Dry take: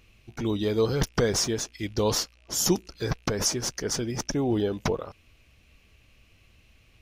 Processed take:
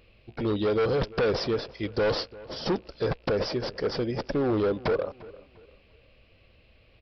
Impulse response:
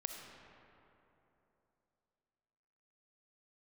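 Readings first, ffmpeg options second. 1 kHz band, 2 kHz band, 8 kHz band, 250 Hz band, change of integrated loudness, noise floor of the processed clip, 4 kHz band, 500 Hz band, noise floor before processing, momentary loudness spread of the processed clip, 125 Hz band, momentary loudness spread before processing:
+1.0 dB, +1.0 dB, below −25 dB, −1.5 dB, −1.0 dB, −60 dBFS, −4.5 dB, +2.0 dB, −60 dBFS, 9 LU, −3.0 dB, 7 LU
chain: -filter_complex "[0:a]equalizer=frequency=530:width_type=o:width=0.71:gain=11.5,aresample=11025,asoftclip=type=hard:threshold=-20.5dB,aresample=44100,asplit=2[link_01][link_02];[link_02]adelay=347,lowpass=frequency=2300:poles=1,volume=-19.5dB,asplit=2[link_03][link_04];[link_04]adelay=347,lowpass=frequency=2300:poles=1,volume=0.34,asplit=2[link_05][link_06];[link_06]adelay=347,lowpass=frequency=2300:poles=1,volume=0.34[link_07];[link_01][link_03][link_05][link_07]amix=inputs=4:normalize=0,volume=-1dB"

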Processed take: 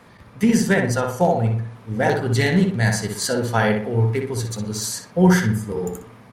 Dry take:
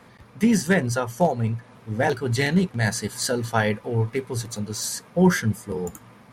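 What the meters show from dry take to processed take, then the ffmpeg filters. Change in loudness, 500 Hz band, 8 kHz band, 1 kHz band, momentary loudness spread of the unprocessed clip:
+3.5 dB, +3.5 dB, +2.0 dB, +3.5 dB, 11 LU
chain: -filter_complex "[0:a]asplit=2[link_01][link_02];[link_02]adelay=61,lowpass=frequency=2500:poles=1,volume=-3.5dB,asplit=2[link_03][link_04];[link_04]adelay=61,lowpass=frequency=2500:poles=1,volume=0.44,asplit=2[link_05][link_06];[link_06]adelay=61,lowpass=frequency=2500:poles=1,volume=0.44,asplit=2[link_07][link_08];[link_08]adelay=61,lowpass=frequency=2500:poles=1,volume=0.44,asplit=2[link_09][link_10];[link_10]adelay=61,lowpass=frequency=2500:poles=1,volume=0.44,asplit=2[link_11][link_12];[link_12]adelay=61,lowpass=frequency=2500:poles=1,volume=0.44[link_13];[link_01][link_03][link_05][link_07][link_09][link_11][link_13]amix=inputs=7:normalize=0,volume=1.5dB"

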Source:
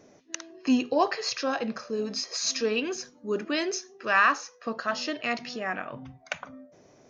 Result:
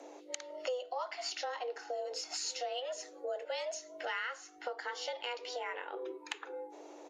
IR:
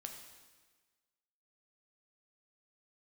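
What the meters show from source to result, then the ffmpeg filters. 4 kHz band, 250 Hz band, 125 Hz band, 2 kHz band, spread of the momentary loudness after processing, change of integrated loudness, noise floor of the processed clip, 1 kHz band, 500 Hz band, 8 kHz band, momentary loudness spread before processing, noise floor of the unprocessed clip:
−8.0 dB, −25.5 dB, below −35 dB, −13.0 dB, 7 LU, −11.5 dB, −54 dBFS, −11.5 dB, −8.0 dB, can't be measured, 14 LU, −58 dBFS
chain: -af "aeval=exprs='val(0)+0.000708*(sin(2*PI*50*n/s)+sin(2*PI*2*50*n/s)/2+sin(2*PI*3*50*n/s)/3+sin(2*PI*4*50*n/s)/4+sin(2*PI*5*50*n/s)/5)':channel_layout=same,afreqshift=250,firequalizer=gain_entry='entry(350,0);entry(900,-6);entry(2300,-6);entry(3800,-2);entry(5700,-10);entry(8300,2)':delay=0.05:min_phase=1,acompressor=threshold=-45dB:ratio=5,volume=7.5dB" -ar 32000 -c:a libvorbis -b:a 48k

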